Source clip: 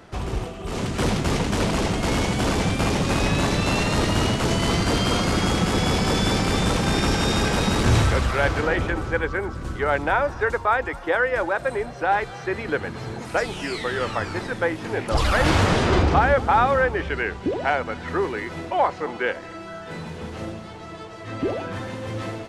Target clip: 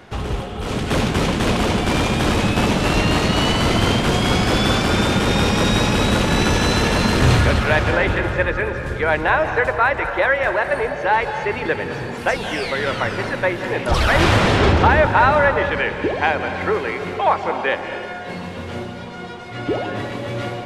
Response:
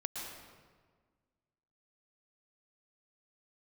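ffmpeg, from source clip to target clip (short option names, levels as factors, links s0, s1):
-filter_complex "[0:a]equalizer=f=3000:t=o:w=1.4:g=4.5,asplit=2[s0][s1];[1:a]atrim=start_sample=2205,asetrate=27783,aresample=44100,lowpass=3200[s2];[s1][s2]afir=irnorm=-1:irlink=0,volume=0.447[s3];[s0][s3]amix=inputs=2:normalize=0,asetrate=48000,aresample=44100"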